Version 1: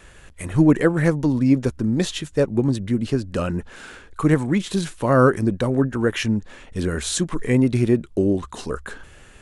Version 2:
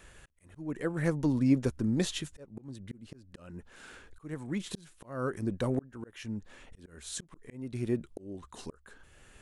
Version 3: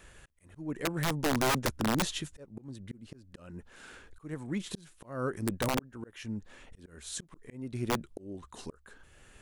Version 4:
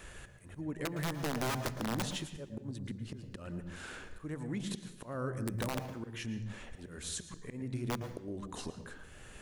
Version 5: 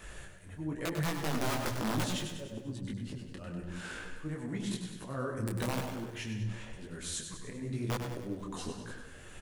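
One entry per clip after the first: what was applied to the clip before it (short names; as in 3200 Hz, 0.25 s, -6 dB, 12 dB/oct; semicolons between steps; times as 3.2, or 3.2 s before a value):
high shelf 10000 Hz +5.5 dB; auto swell 0.715 s; gain -8 dB
wrapped overs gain 22 dB
compressor 2.5:1, threshold -44 dBFS, peak gain reduction 12.5 dB; resonator 200 Hz, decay 1.4 s, mix 30%; on a send at -9 dB: reverb RT60 0.70 s, pre-delay 0.108 s; on the sum: gain +7.5 dB
feedback echo 98 ms, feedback 56%, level -8 dB; detuned doubles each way 35 cents; gain +5 dB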